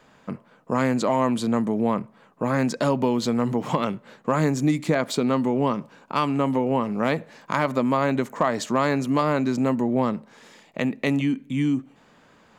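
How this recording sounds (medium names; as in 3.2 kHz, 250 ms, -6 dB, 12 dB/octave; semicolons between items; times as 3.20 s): noise floor -56 dBFS; spectral tilt -6.0 dB/octave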